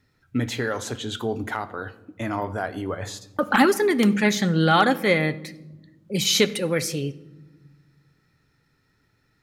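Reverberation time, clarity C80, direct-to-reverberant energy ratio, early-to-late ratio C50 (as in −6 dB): 1.1 s, 19.5 dB, 12.0 dB, 17.0 dB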